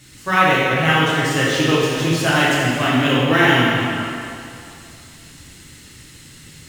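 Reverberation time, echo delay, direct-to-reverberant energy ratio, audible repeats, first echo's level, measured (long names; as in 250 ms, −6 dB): 2.6 s, no echo audible, −8.0 dB, no echo audible, no echo audible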